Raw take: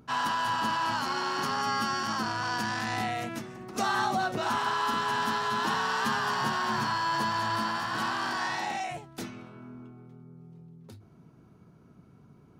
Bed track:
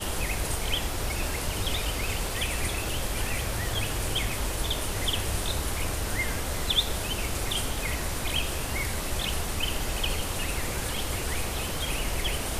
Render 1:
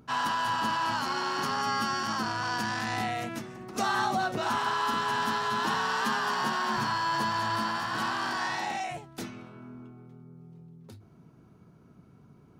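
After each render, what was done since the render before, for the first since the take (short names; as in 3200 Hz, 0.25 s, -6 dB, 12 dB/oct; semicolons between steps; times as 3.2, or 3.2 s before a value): 6.01–6.77 HPF 160 Hz 24 dB/oct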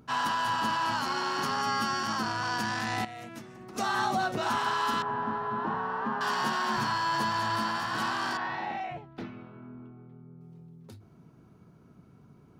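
3.05–4.11 fade in, from -12.5 dB; 5.02–6.21 LPF 1100 Hz; 8.37–10.41 air absorption 330 m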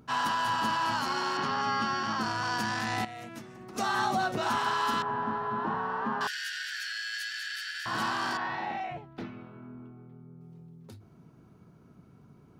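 1.37–2.21 LPF 4500 Hz; 6.27–7.86 steep high-pass 1500 Hz 96 dB/oct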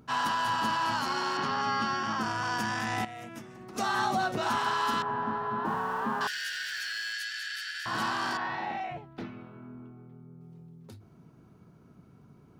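1.96–3.51 notch 4200 Hz, Q 5.1; 5.65–7.13 zero-crossing step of -46.5 dBFS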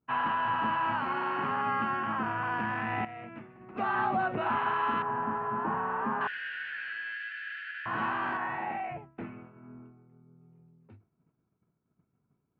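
Chebyshev low-pass 2600 Hz, order 4; expander -43 dBFS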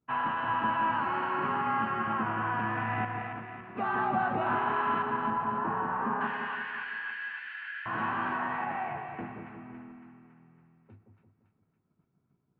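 air absorption 170 m; on a send: split-band echo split 920 Hz, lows 0.173 s, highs 0.279 s, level -5.5 dB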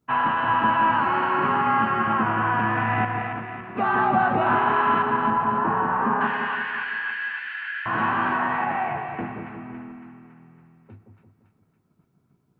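gain +8.5 dB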